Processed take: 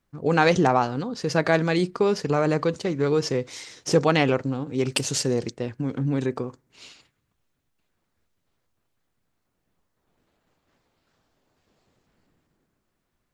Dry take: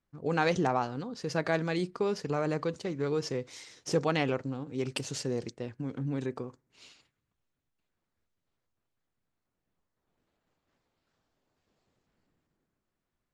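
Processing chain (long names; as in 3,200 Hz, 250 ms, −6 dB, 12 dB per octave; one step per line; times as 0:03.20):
0:04.92–0:05.34: high-shelf EQ 5,700 Hz +7 dB
level +8.5 dB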